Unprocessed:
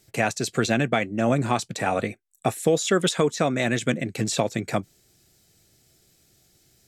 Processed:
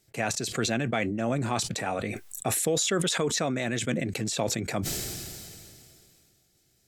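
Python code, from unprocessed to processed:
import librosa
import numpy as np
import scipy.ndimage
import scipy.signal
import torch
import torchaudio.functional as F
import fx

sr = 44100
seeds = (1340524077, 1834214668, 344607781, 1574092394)

y = fx.sustainer(x, sr, db_per_s=24.0)
y = F.gain(torch.from_numpy(y), -7.0).numpy()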